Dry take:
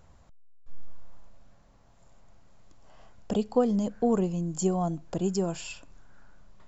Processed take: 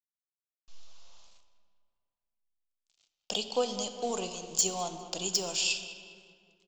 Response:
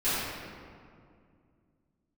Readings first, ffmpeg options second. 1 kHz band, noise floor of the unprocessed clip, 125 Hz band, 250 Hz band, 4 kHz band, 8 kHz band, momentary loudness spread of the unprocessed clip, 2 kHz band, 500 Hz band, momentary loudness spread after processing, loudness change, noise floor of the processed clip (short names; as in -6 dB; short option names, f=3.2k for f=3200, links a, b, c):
-2.5 dB, -57 dBFS, -16.0 dB, -14.5 dB, +14.0 dB, n/a, 9 LU, +8.0 dB, -6.0 dB, 8 LU, -2.5 dB, under -85 dBFS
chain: -filter_complex "[0:a]agate=range=-6dB:threshold=-47dB:ratio=16:detection=peak,acrossover=split=480 5400:gain=0.2 1 0.2[a][b][c];[a][b][c]amix=inputs=3:normalize=0,bandreject=f=56.81:t=h:w=4,bandreject=f=113.62:t=h:w=4,bandreject=f=170.43:t=h:w=4,bandreject=f=227.24:t=h:w=4,bandreject=f=284.05:t=h:w=4,bandreject=f=340.86:t=h:w=4,aresample=16000,aeval=exprs='sgn(val(0))*max(abs(val(0))-0.00126,0)':c=same,aresample=44100,aexciter=amount=13.3:drive=1.8:freq=2.7k,asoftclip=type=hard:threshold=-16dB,asplit=2[d][e];[e]adelay=202,lowpass=f=3.8k:p=1,volume=-14dB,asplit=2[f][g];[g]adelay=202,lowpass=f=3.8k:p=1,volume=0.52,asplit=2[h][i];[i]adelay=202,lowpass=f=3.8k:p=1,volume=0.52,asplit=2[j][k];[k]adelay=202,lowpass=f=3.8k:p=1,volume=0.52,asplit=2[l][m];[m]adelay=202,lowpass=f=3.8k:p=1,volume=0.52[n];[d][f][h][j][l][n]amix=inputs=6:normalize=0,asplit=2[o][p];[1:a]atrim=start_sample=2205,asetrate=52920,aresample=44100[q];[p][q]afir=irnorm=-1:irlink=0,volume=-19dB[r];[o][r]amix=inputs=2:normalize=0,volume=-2.5dB"